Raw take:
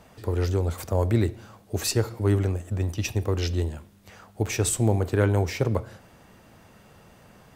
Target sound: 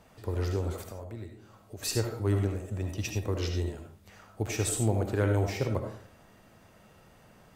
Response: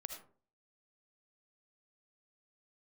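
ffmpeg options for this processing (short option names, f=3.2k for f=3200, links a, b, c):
-filter_complex "[0:a]asettb=1/sr,asplit=3[a][b][c];[a]atrim=end=0.744[d];[b]atrim=start=0.74:end=1.83,asetpts=PTS-STARTPTS,afade=t=in:d=0.004:c=qsin,afade=t=out:st=1.086:d=0.004:c=qsin,acompressor=threshold=-38dB:ratio=3[e];[c]atrim=start=1.826[f];[d][e]acrossfade=d=0.004:c1=hsin:c2=qsin[g];[g][f]acrossfade=d=0.004:c1=qsin:c2=hsin[h];[1:a]atrim=start_sample=2205[i];[h][i]afir=irnorm=-1:irlink=0,volume=-1.5dB"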